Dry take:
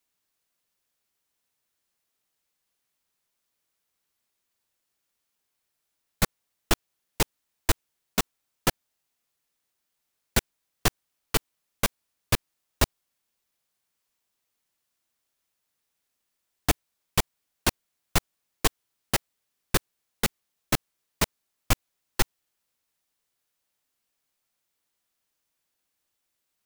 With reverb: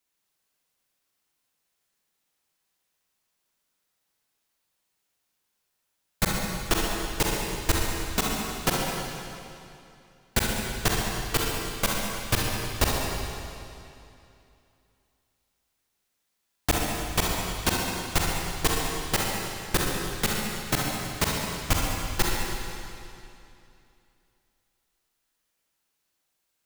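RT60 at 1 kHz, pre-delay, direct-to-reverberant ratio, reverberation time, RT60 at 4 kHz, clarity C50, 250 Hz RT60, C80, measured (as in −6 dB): 2.7 s, 39 ms, −3.0 dB, 2.7 s, 2.5 s, −2.0 dB, 2.8 s, 0.5 dB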